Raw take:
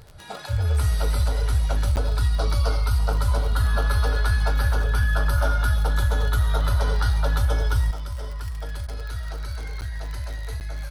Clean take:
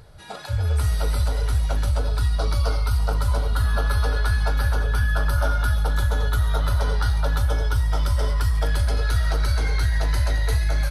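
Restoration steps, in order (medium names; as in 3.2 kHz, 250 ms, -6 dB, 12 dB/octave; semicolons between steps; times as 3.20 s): de-click; interpolate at 1.96/9.81/10.60 s, 9.5 ms; interpolate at 8.87 s, 13 ms; trim 0 dB, from 7.91 s +10 dB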